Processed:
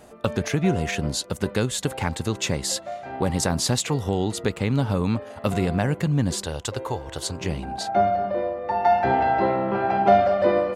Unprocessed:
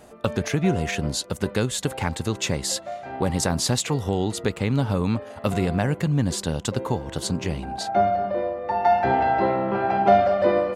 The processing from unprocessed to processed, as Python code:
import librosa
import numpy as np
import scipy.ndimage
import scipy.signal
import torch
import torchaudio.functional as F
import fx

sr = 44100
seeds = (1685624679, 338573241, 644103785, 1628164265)

y = fx.peak_eq(x, sr, hz=200.0, db=-14.5, octaves=0.94, at=(6.45, 7.41))